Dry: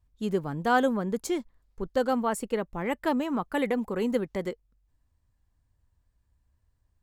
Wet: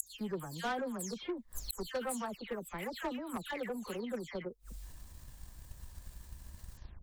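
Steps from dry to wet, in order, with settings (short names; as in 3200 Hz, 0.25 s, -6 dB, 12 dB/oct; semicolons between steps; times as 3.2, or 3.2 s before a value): spectral delay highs early, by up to 0.251 s; high shelf 3300 Hz +11 dB; transient shaper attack +9 dB, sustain +5 dB; soft clip -19 dBFS, distortion -10 dB; flipped gate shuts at -37 dBFS, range -29 dB; gain +17 dB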